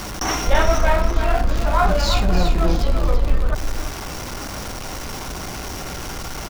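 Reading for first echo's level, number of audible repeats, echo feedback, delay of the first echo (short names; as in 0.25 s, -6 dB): -8.5 dB, 1, no steady repeat, 0.337 s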